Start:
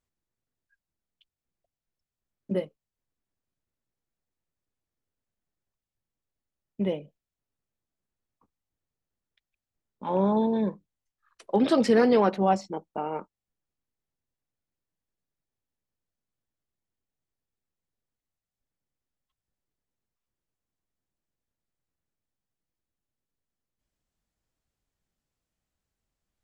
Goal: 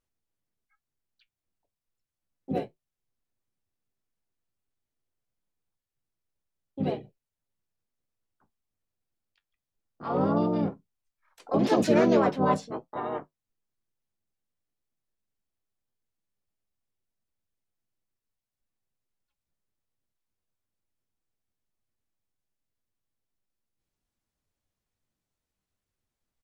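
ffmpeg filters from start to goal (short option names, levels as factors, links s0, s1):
-filter_complex "[0:a]asplit=4[s0][s1][s2][s3];[s1]asetrate=22050,aresample=44100,atempo=2,volume=0.251[s4];[s2]asetrate=35002,aresample=44100,atempo=1.25992,volume=0.891[s5];[s3]asetrate=58866,aresample=44100,atempo=0.749154,volume=1[s6];[s0][s4][s5][s6]amix=inputs=4:normalize=0,flanger=delay=7.7:depth=3.3:regen=-58:speed=1:shape=triangular,volume=0.841"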